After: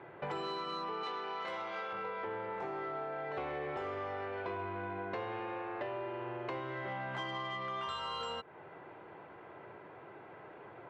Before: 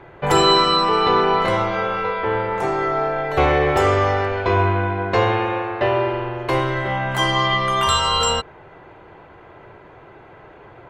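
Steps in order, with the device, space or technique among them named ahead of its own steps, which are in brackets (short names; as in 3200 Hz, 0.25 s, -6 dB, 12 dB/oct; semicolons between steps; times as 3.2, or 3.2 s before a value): AM radio (BPF 150–3200 Hz; compressor 6:1, threshold -29 dBFS, peak gain reduction 16 dB; soft clip -21.5 dBFS, distortion -23 dB); 1.03–1.93 RIAA curve recording; gain -7.5 dB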